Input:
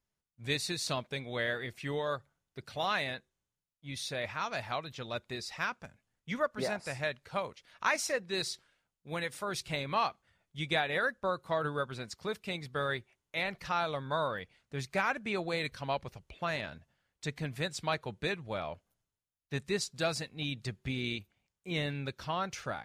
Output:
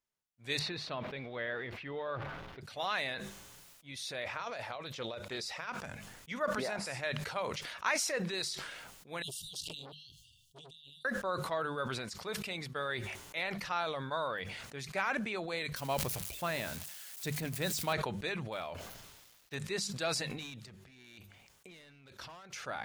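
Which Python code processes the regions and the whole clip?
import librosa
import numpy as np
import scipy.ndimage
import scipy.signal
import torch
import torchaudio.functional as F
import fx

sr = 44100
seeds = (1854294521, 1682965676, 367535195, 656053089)

y = fx.chain(x, sr, fx.zero_step(step_db=-48.5),
    fx.air_absorb(metres=350.0), at=(0.59, 2.61))
y = fx.chain(y, sr, fx.peak_eq(hz=540.0, db=6.5, octaves=0.61),
    fx.over_compress(threshold_db=-36.0, ratio=-0.5),
    fx.doppler_dist(depth_ms=0.12), at=(4.24, 5.69))
y = fx.chain(y, sr, fx.over_compress(threshold_db=-41.0, ratio=-1.0),
    fx.brickwall_bandstop(low_hz=160.0, high_hz=2700.0),
    fx.transformer_sat(knee_hz=2000.0), at=(9.22, 11.05))
y = fx.chain(y, sr, fx.crossing_spikes(level_db=-35.0),
    fx.low_shelf(hz=430.0, db=9.0), at=(15.76, 17.93))
y = fx.chain(y, sr, fx.median_filter(points=5),
    fx.high_shelf(hz=3800.0, db=8.0),
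    fx.sustainer(db_per_s=120.0), at=(18.52, 19.55))
y = fx.chain(y, sr, fx.overload_stage(gain_db=34.0),
    fx.over_compress(threshold_db=-50.0, ratio=-1.0), at=(20.3, 22.53))
y = fx.low_shelf(y, sr, hz=250.0, db=-9.0)
y = fx.hum_notches(y, sr, base_hz=50, count=4)
y = fx.sustainer(y, sr, db_per_s=33.0)
y = y * librosa.db_to_amplitude(-2.5)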